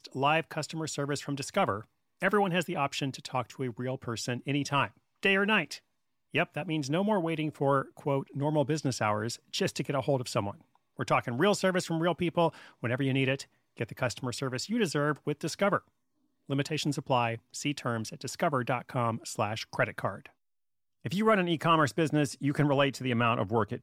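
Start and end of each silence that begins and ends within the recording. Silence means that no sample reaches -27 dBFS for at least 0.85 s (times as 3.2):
20.09–21.06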